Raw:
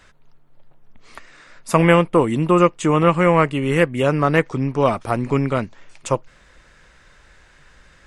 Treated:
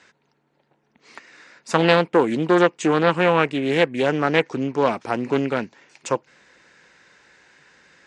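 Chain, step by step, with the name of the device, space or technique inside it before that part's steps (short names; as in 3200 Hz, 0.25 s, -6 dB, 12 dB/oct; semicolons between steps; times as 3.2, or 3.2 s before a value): full-range speaker at full volume (Doppler distortion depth 0.33 ms; speaker cabinet 230–7400 Hz, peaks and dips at 620 Hz -6 dB, 1200 Hz -7 dB, 3300 Hz -4 dB); gain +1 dB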